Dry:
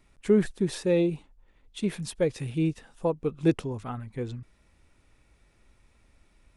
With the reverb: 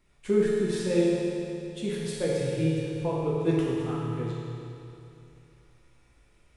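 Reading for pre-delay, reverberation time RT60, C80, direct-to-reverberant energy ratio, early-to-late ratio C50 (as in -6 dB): 7 ms, 2.8 s, -1.0 dB, -6.5 dB, -3.0 dB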